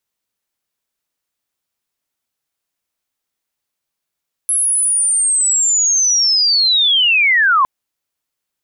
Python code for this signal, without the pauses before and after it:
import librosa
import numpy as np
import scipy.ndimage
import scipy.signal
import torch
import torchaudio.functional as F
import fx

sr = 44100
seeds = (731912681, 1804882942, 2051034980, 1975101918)

y = fx.chirp(sr, length_s=3.16, from_hz=11000.0, to_hz=1000.0, law='linear', from_db=-12.5, to_db=-9.0)